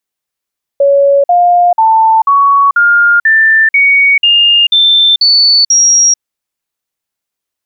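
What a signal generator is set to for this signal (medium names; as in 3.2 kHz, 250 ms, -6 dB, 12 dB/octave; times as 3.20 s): stepped sine 560 Hz up, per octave 3, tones 11, 0.44 s, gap 0.05 s -4 dBFS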